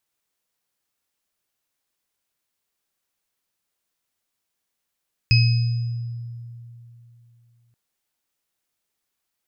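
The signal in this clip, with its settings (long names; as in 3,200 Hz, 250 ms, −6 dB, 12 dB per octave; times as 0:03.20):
inharmonic partials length 2.43 s, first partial 118 Hz, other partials 2,550/5,020 Hz, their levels −7.5/−7 dB, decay 3.04 s, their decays 0.76/1.13 s, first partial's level −12 dB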